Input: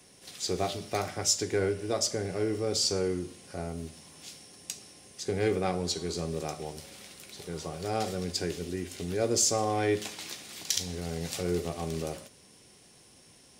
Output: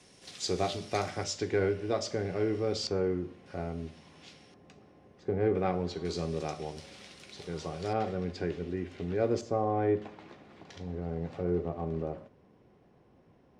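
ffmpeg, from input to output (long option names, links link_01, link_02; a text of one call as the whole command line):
ffmpeg -i in.wav -af "asetnsamples=nb_out_samples=441:pad=0,asendcmd='1.24 lowpass f 3400;2.87 lowpass f 1800;3.46 lowpass f 3100;4.54 lowpass f 1200;5.55 lowpass f 2200;6.05 lowpass f 5000;7.93 lowpass f 2100;9.41 lowpass f 1100',lowpass=6900" out.wav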